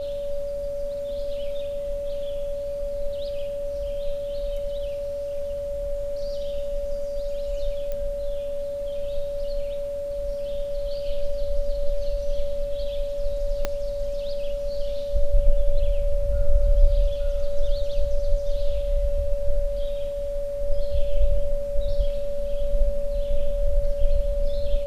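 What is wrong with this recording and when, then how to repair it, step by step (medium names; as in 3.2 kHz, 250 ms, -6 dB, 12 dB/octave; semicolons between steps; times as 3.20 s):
whine 570 Hz -27 dBFS
7.92 s: pop -19 dBFS
13.65 s: pop -10 dBFS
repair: de-click; band-stop 570 Hz, Q 30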